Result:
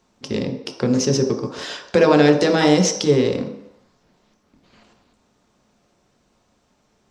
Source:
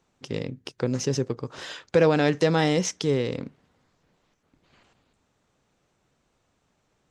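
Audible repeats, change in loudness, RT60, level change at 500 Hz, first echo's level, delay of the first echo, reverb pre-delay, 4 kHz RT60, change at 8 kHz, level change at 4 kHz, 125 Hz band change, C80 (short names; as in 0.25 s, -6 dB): none, +7.0 dB, 0.75 s, +6.5 dB, none, none, 3 ms, 0.70 s, +8.0 dB, +7.5 dB, +4.0 dB, 10.5 dB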